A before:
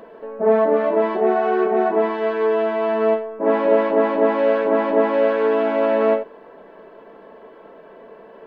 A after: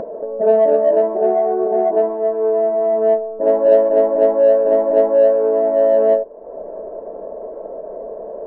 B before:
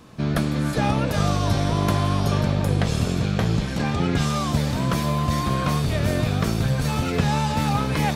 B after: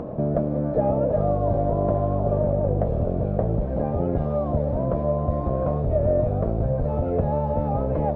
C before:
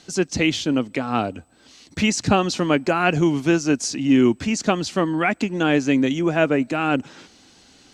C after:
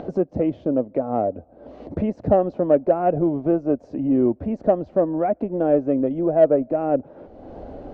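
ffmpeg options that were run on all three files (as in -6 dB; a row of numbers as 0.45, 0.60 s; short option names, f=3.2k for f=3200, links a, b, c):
-filter_complex "[0:a]asubboost=boost=3.5:cutoff=74,lowpass=f=600:t=q:w=4.5,asplit=2[a][b];[b]asoftclip=type=tanh:threshold=-8dB,volume=-10.5dB[c];[a][c]amix=inputs=2:normalize=0,acompressor=mode=upward:threshold=-13dB:ratio=2.5,volume=-6dB"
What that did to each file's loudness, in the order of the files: +3.5, -1.0, -1.0 LU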